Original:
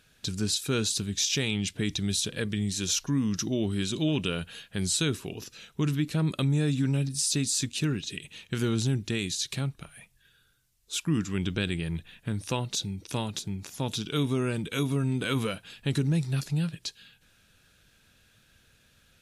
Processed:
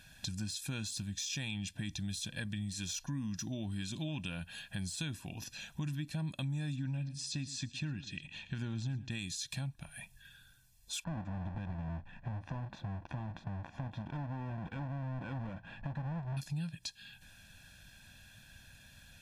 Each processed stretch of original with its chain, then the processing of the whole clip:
6.76–9.11 s: distance through air 110 m + delay 113 ms -18.5 dB
11.04–16.37 s: square wave that keeps the level + compression 3:1, threshold -32 dBFS + low-pass 1.5 kHz
whole clip: de-esser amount 55%; comb 1.2 ms, depth 87%; compression 2.5:1, threshold -45 dBFS; trim +1.5 dB

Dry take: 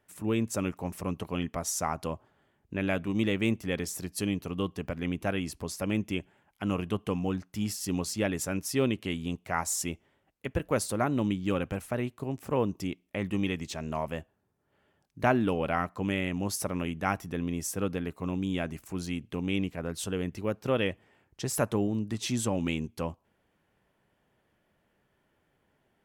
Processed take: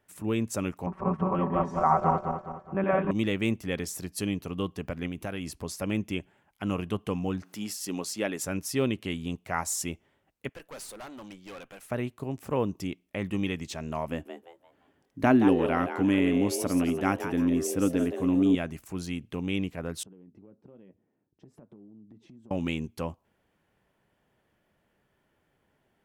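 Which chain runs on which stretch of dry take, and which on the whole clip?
0.86–3.11 s: backward echo that repeats 104 ms, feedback 64%, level -1.5 dB + resonant low-pass 1.1 kHz, resonance Q 2.4 + comb 5.3 ms, depth 89%
5.06–5.48 s: compression 5:1, threshold -30 dBFS + treble shelf 8.6 kHz +5.5 dB
7.43–8.43 s: high-pass 240 Hz + upward compressor, threshold -41 dBFS
10.49–11.90 s: high-pass 890 Hz 6 dB/octave + valve stage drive 39 dB, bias 0.6
14.08–18.55 s: peaking EQ 280 Hz +13 dB 0.41 oct + frequency-shifting echo 173 ms, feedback 33%, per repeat +130 Hz, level -9 dB
20.03–22.51 s: band-pass filter 250 Hz, Q 1.3 + flange 1.2 Hz, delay 5.1 ms, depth 1.8 ms, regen -66% + compression 8:1, threshold -48 dBFS
whole clip: none

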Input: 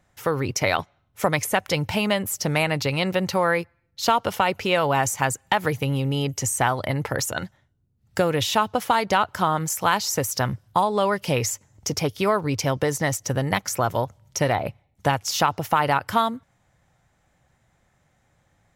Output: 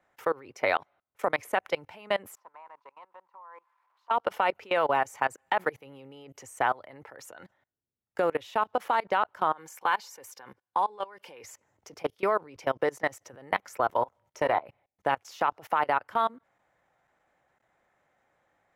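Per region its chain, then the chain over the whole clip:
2.35–4.11 s: zero-crossing glitches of -20 dBFS + band-pass filter 1 kHz, Q 11
9.52–11.44 s: bass shelf 260 Hz -11.5 dB + comb of notches 650 Hz
13.92–14.66 s: dynamic bell 1 kHz, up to +6 dB, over -40 dBFS, Q 3.1 + doubling 26 ms -10.5 dB
whole clip: three-band isolator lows -19 dB, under 300 Hz, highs -13 dB, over 2.6 kHz; level held to a coarse grid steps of 24 dB

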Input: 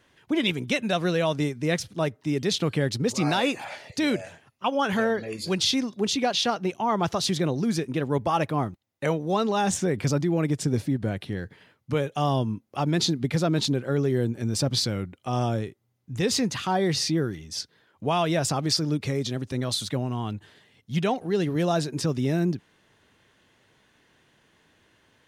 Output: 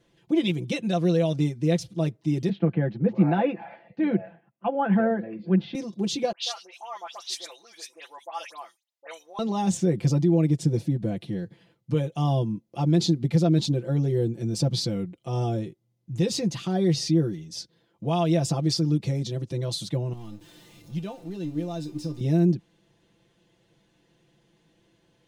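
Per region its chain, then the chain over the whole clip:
2.49–5.75 s: cabinet simulation 150–2300 Hz, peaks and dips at 200 Hz +8 dB, 760 Hz +6 dB, 1.6 kHz +7 dB + three bands expanded up and down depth 40%
6.32–9.39 s: Bessel high-pass 1.2 kHz, order 4 + phase dispersion highs, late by 95 ms, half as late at 2.5 kHz
20.13–22.21 s: jump at every zero crossing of -32.5 dBFS + feedback comb 300 Hz, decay 0.24 s, mix 80% + transient shaper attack +3 dB, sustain -1 dB
whole clip: low-pass 4 kHz 6 dB/octave; peaking EQ 1.5 kHz -13 dB 1.8 oct; comb 5.9 ms, depth 86%

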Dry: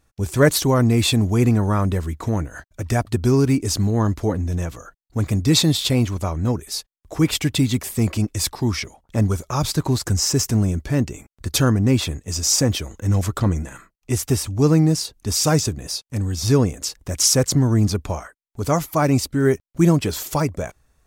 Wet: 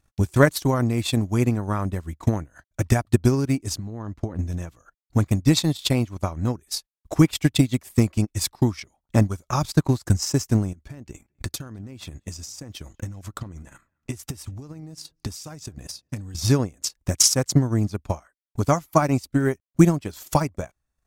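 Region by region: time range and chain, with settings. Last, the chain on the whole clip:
3.78–4.39 s: low-pass 2.9 kHz 6 dB/octave + compression 10:1, threshold -22 dBFS
10.73–16.35 s: compression 16:1, threshold -28 dBFS + feedback echo behind a low-pass 207 ms, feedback 37%, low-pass 2.8 kHz, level -23 dB
whole clip: peaking EQ 450 Hz -6 dB 0.34 oct; transient shaper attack +12 dB, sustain -12 dB; trim -6.5 dB

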